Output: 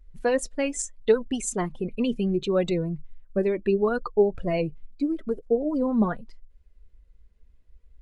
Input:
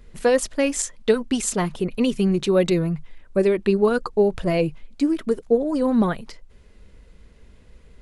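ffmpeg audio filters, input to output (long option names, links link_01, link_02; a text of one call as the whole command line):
ffmpeg -i in.wav -af "afftdn=noise_reduction=17:noise_floor=-32,flanger=delay=1.1:depth=4:regen=68:speed=0.75:shape=triangular" out.wav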